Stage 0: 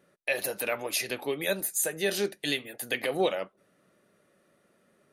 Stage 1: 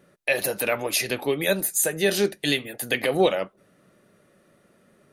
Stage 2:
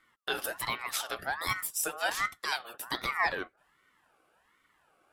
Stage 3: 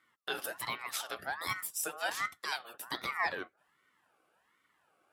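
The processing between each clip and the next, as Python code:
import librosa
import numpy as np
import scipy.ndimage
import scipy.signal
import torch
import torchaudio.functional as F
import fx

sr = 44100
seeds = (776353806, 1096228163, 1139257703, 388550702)

y1 = fx.low_shelf(x, sr, hz=170.0, db=8.0)
y1 = F.gain(torch.from_numpy(y1), 5.5).numpy()
y2 = fx.ring_lfo(y1, sr, carrier_hz=1300.0, swing_pct=30, hz=1.3)
y2 = F.gain(torch.from_numpy(y2), -6.5).numpy()
y3 = scipy.signal.sosfilt(scipy.signal.butter(2, 95.0, 'highpass', fs=sr, output='sos'), y2)
y3 = F.gain(torch.from_numpy(y3), -4.0).numpy()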